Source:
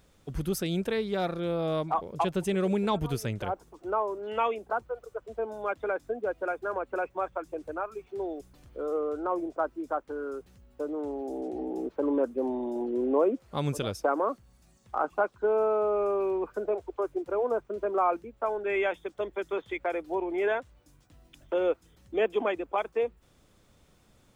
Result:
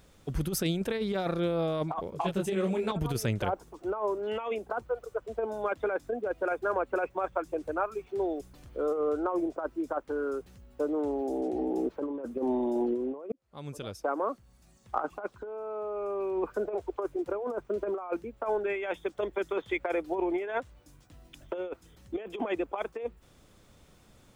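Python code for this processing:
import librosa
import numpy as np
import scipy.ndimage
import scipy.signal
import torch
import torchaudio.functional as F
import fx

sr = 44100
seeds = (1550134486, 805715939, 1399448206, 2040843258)

y = fx.detune_double(x, sr, cents=31, at=(2.1, 2.92))
y = fx.edit(y, sr, fx.fade_in_span(start_s=13.32, length_s=1.86), tone=tone)
y = fx.over_compress(y, sr, threshold_db=-30.0, ratio=-0.5)
y = y * 10.0 ** (1.0 / 20.0)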